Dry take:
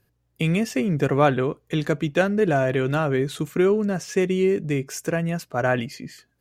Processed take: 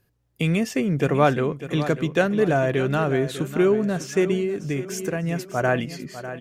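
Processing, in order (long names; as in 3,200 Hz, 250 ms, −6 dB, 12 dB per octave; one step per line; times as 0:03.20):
on a send: repeating echo 599 ms, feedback 41%, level −12.5 dB
0:04.36–0:05.24: on the sum: downward compressor 5 to 1, threshold −22 dBFS, peak gain reduction 6.5 dB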